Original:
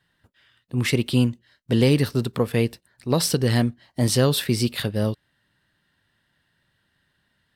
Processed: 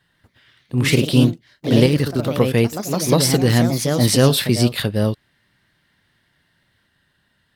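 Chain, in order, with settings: 1.86–2.27 s: level held to a coarse grid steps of 11 dB; ever faster or slower copies 144 ms, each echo +2 st, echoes 3, each echo -6 dB; trim +4.5 dB

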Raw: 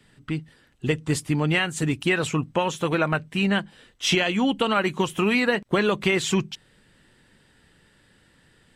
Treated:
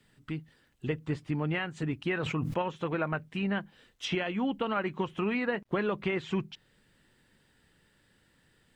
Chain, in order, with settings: low-pass that closes with the level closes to 2.2 kHz, closed at -21 dBFS; word length cut 12-bit, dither none; 2.14–2.62 s: decay stretcher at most 40 dB/s; trim -8 dB

